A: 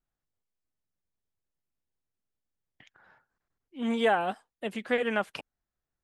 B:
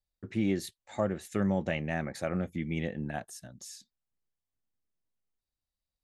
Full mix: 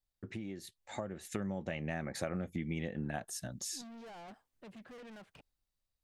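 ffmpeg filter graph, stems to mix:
-filter_complex "[0:a]aemphasis=mode=reproduction:type=bsi,alimiter=limit=-21dB:level=0:latency=1:release=53,asoftclip=type=tanh:threshold=-38dB,volume=-17dB[a];[1:a]acompressor=threshold=-39dB:ratio=8,volume=-1dB[b];[a][b]amix=inputs=2:normalize=0,dynaudnorm=f=330:g=7:m=6.5dB"

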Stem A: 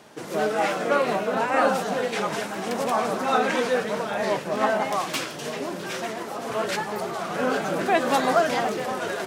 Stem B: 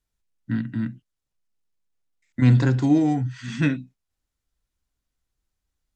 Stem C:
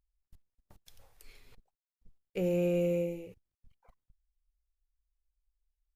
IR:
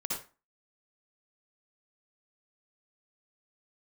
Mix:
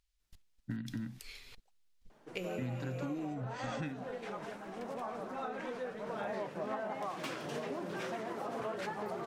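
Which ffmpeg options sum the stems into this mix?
-filter_complex "[0:a]highshelf=f=2.8k:g=-11.5,adelay=2100,volume=-2.5dB,afade=t=in:st=6.05:d=0.22:silence=0.266073[a];[1:a]asubboost=boost=3:cutoff=58,acompressor=threshold=-33dB:ratio=1.5,adelay=200,volume=-2.5dB[b];[2:a]acompressor=threshold=-35dB:ratio=6,equalizer=f=3.9k:t=o:w=3:g=13,volume=-1dB[c];[a][b][c]amix=inputs=3:normalize=0,acompressor=threshold=-36dB:ratio=6"

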